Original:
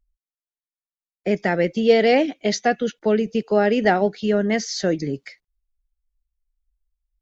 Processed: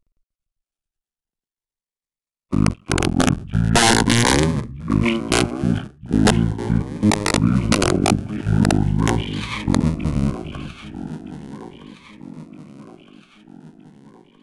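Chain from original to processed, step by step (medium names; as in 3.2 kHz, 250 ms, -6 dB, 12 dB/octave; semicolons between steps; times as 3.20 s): cycle switcher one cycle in 2, muted; treble shelf 3.6 kHz -5 dB; in parallel at -2 dB: level held to a coarse grid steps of 17 dB; on the sum: two-band feedback delay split 330 Hz, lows 197 ms, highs 633 ms, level -12 dB; integer overflow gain 9 dB; speed mistake 15 ips tape played at 7.5 ips; Shepard-style phaser rising 0.4 Hz; trim +4 dB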